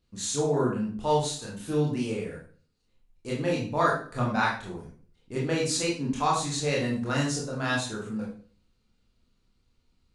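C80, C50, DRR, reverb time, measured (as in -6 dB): 10.0 dB, 4.5 dB, -4.5 dB, 0.45 s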